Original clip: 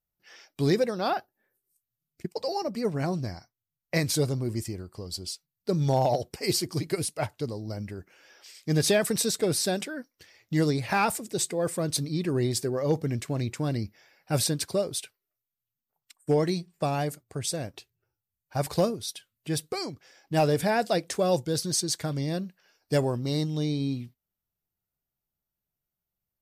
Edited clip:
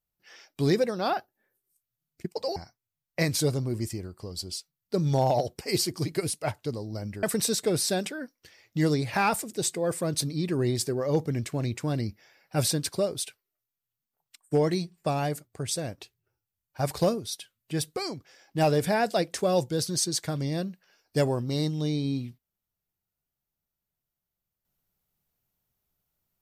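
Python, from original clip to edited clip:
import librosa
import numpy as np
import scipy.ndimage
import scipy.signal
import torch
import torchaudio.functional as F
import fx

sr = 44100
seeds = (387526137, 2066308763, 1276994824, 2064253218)

y = fx.edit(x, sr, fx.cut(start_s=2.56, length_s=0.75),
    fx.cut(start_s=7.98, length_s=1.01), tone=tone)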